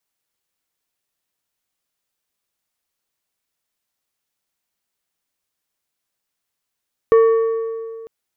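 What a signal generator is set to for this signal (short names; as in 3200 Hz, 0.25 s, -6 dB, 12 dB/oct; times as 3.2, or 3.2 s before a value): metal hit plate, length 0.95 s, lowest mode 452 Hz, decay 2.20 s, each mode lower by 12 dB, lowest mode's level -7 dB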